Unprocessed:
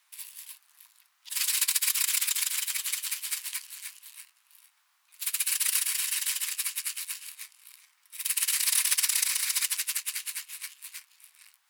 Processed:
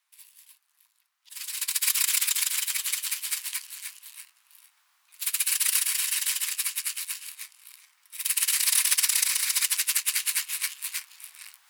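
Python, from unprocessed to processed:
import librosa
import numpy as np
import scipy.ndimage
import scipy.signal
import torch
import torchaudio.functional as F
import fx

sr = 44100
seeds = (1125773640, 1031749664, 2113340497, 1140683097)

y = fx.gain(x, sr, db=fx.line((1.45, -9.0), (1.88, 2.5), (9.55, 2.5), (10.47, 10.0)))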